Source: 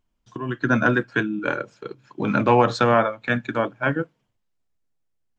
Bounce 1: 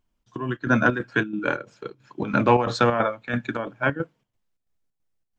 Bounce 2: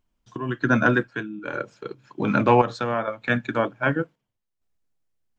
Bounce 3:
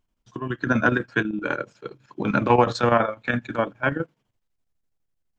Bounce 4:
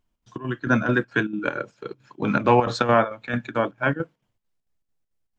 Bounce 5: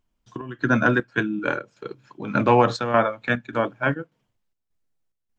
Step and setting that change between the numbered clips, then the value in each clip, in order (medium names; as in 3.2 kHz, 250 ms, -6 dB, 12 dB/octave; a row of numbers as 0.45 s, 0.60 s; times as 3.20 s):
square tremolo, rate: 3 Hz, 0.65 Hz, 12 Hz, 4.5 Hz, 1.7 Hz